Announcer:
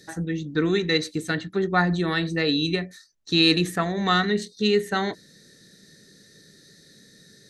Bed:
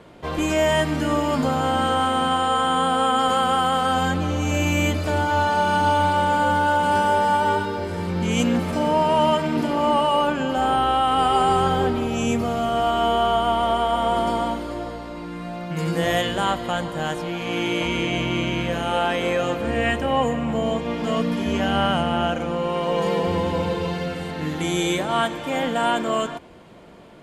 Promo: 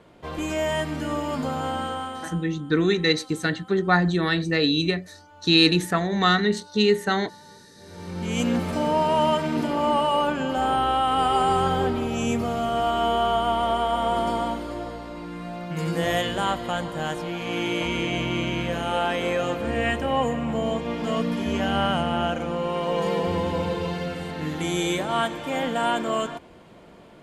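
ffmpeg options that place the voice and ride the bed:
-filter_complex "[0:a]adelay=2150,volume=1.19[s0];[1:a]volume=11.9,afade=t=out:st=1.67:d=0.8:silence=0.0630957,afade=t=in:st=7.77:d=0.75:silence=0.0421697[s1];[s0][s1]amix=inputs=2:normalize=0"

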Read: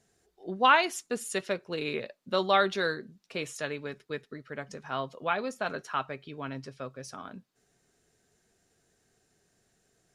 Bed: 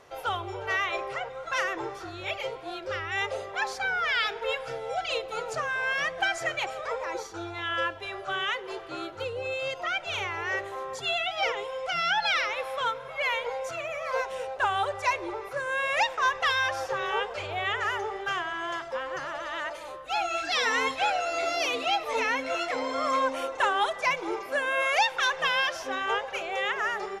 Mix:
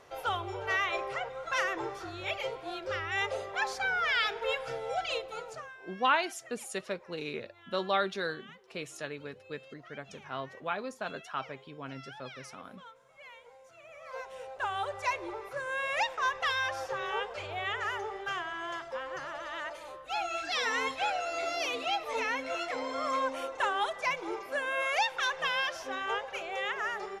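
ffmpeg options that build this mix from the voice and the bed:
-filter_complex "[0:a]adelay=5400,volume=0.562[s0];[1:a]volume=6.31,afade=t=out:st=4.97:d=0.81:silence=0.0891251,afade=t=in:st=13.72:d=1.32:silence=0.125893[s1];[s0][s1]amix=inputs=2:normalize=0"

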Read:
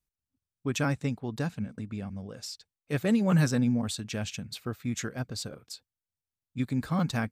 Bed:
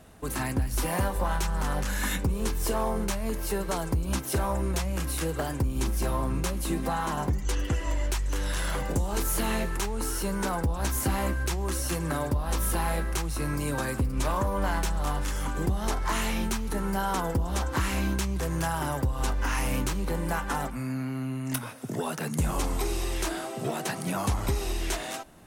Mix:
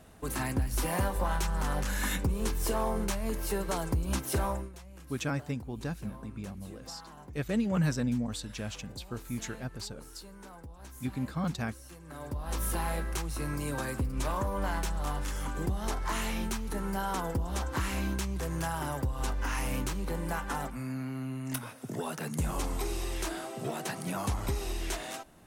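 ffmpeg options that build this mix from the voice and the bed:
-filter_complex "[0:a]adelay=4450,volume=0.596[s0];[1:a]volume=4.47,afade=t=out:st=4.47:d=0.23:silence=0.133352,afade=t=in:st=12.06:d=0.57:silence=0.16788[s1];[s0][s1]amix=inputs=2:normalize=0"

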